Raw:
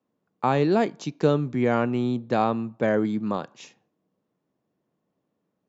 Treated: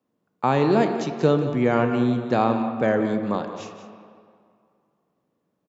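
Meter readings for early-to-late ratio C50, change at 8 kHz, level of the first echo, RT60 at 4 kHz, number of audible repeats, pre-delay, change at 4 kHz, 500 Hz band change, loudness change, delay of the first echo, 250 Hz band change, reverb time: 6.5 dB, can't be measured, −12.5 dB, 1.5 s, 1, 28 ms, +2.0 dB, +2.5 dB, +2.5 dB, 180 ms, +2.5 dB, 2.2 s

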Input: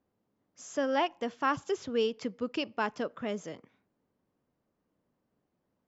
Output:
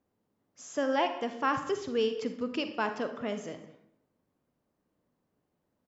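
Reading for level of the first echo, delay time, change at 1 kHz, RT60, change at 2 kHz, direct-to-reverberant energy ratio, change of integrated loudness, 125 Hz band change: −20.5 dB, 198 ms, +1.0 dB, 0.75 s, +0.5 dB, 7.5 dB, +1.0 dB, +0.5 dB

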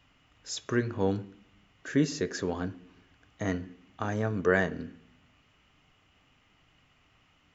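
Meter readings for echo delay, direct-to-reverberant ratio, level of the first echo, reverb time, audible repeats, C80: no echo audible, 10.0 dB, no echo audible, 0.65 s, no echo audible, 21.0 dB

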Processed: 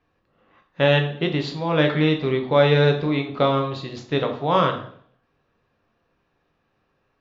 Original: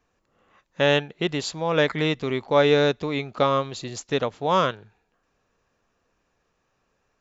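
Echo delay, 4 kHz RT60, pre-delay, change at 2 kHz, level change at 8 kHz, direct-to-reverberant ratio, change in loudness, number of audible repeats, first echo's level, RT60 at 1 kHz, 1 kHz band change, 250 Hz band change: no echo audible, 0.60 s, 3 ms, +1.5 dB, can't be measured, 3.5 dB, +2.5 dB, no echo audible, no echo audible, 0.55 s, +1.5 dB, +4.0 dB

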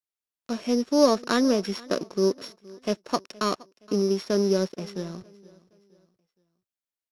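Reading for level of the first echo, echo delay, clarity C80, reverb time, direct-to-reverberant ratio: −22.5 dB, 469 ms, no reverb audible, no reverb audible, no reverb audible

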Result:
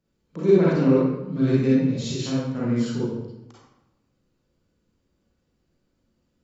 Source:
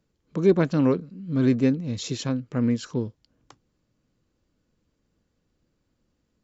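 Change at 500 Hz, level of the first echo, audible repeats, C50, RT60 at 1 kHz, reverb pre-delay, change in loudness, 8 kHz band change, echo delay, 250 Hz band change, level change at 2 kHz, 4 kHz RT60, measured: +3.5 dB, no echo audible, no echo audible, −3.0 dB, 0.95 s, 33 ms, +2.5 dB, can't be measured, no echo audible, +2.0 dB, +1.0 dB, 0.70 s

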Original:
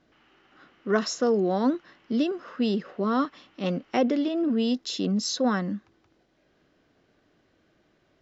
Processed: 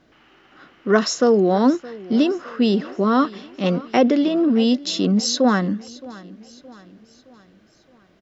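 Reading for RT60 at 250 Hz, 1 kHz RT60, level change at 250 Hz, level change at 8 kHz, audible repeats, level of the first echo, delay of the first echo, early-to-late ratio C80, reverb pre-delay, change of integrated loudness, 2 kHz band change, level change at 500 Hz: no reverb audible, no reverb audible, +7.5 dB, can't be measured, 3, −20.0 dB, 618 ms, no reverb audible, no reverb audible, +7.5 dB, +7.5 dB, +7.5 dB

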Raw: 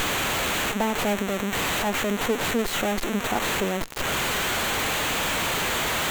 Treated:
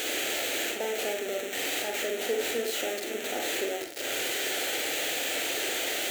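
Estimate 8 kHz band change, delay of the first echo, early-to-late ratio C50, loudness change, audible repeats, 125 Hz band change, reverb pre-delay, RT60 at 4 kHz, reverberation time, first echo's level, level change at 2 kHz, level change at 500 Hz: −2.5 dB, no echo audible, 5.5 dB, −5.0 dB, no echo audible, below −20 dB, 35 ms, 0.25 s, 0.45 s, no echo audible, −6.0 dB, −3.0 dB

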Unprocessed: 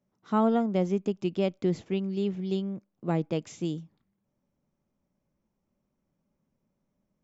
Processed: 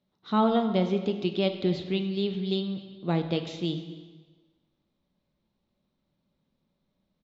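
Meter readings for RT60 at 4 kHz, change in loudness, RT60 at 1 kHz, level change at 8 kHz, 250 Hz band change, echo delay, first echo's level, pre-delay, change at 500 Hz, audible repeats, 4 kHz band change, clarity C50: 1.3 s, +1.0 dB, 1.4 s, can't be measured, +1.0 dB, 264 ms, −21.0 dB, 5 ms, +1.0 dB, 1, +10.0 dB, 9.0 dB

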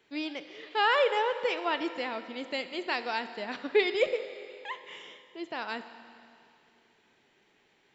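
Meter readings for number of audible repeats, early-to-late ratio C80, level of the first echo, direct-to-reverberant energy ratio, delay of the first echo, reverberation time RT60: no echo audible, 11.5 dB, no echo audible, 10.0 dB, no echo audible, 2.6 s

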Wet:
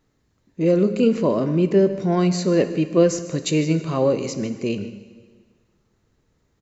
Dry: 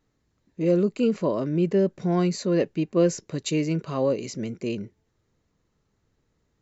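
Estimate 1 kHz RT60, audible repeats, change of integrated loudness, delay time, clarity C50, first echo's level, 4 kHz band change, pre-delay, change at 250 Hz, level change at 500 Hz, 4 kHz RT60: 1.6 s, 1, +4.5 dB, 151 ms, 11.0 dB, −17.0 dB, +5.0 dB, 5 ms, +4.5 dB, +5.0 dB, 1.5 s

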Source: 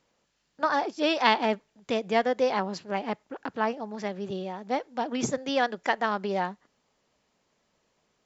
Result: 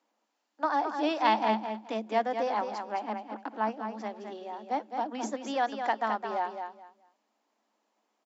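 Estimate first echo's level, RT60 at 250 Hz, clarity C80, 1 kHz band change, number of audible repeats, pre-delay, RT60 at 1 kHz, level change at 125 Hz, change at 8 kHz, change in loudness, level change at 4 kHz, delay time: −7.0 dB, no reverb audible, no reverb audible, −0.5 dB, 3, no reverb audible, no reverb audible, can't be measured, can't be measured, −3.0 dB, −7.5 dB, 213 ms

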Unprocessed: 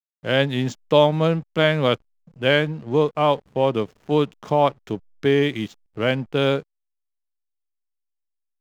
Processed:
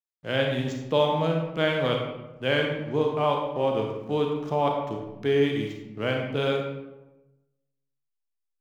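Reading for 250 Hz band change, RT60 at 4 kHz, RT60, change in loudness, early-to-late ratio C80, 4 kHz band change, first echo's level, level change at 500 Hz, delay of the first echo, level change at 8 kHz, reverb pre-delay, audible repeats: −5.0 dB, 0.60 s, 1.0 s, −5.5 dB, 5.5 dB, −5.5 dB, no echo audible, −4.5 dB, no echo audible, can't be measured, 32 ms, no echo audible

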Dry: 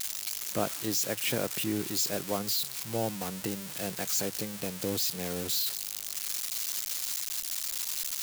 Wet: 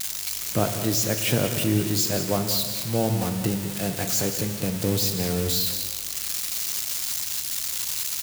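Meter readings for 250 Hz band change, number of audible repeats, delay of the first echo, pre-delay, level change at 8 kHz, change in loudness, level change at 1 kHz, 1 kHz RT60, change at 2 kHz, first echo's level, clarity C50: +9.0 dB, 1, 189 ms, 7 ms, +5.5 dB, +6.5 dB, +6.0 dB, 1.7 s, +5.5 dB, −11.5 dB, 6.5 dB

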